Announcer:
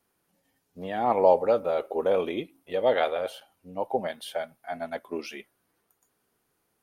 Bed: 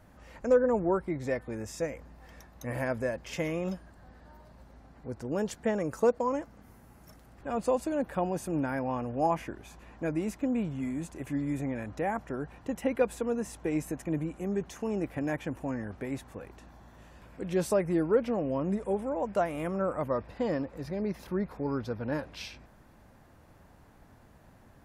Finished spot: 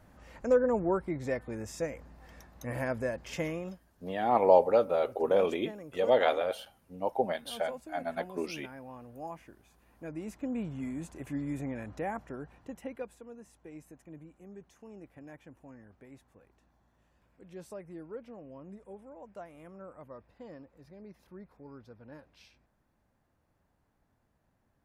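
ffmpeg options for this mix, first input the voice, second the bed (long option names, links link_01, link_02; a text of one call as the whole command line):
ffmpeg -i stem1.wav -i stem2.wav -filter_complex "[0:a]adelay=3250,volume=-1.5dB[link_01];[1:a]volume=9.5dB,afade=type=out:start_time=3.44:duration=0.36:silence=0.223872,afade=type=in:start_time=9.85:duration=0.89:silence=0.281838,afade=type=out:start_time=11.95:duration=1.24:silence=0.199526[link_02];[link_01][link_02]amix=inputs=2:normalize=0" out.wav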